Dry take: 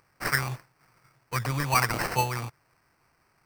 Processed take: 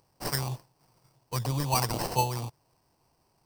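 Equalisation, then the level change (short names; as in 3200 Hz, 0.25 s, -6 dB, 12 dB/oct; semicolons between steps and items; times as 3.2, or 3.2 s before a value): band shelf 1700 Hz -13.5 dB 1.2 oct; 0.0 dB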